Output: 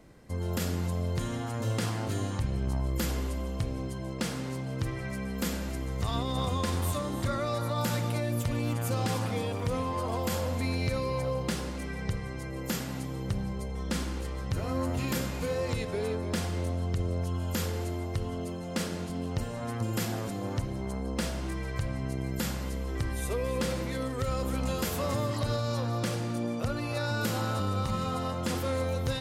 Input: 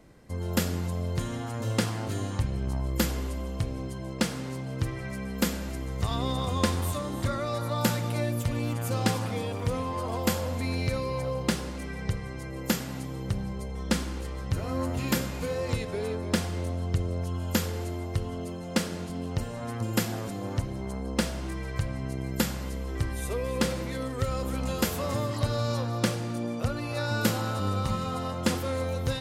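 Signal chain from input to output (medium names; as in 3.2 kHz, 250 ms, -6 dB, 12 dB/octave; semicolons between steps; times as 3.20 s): peak limiter -20 dBFS, peak gain reduction 8.5 dB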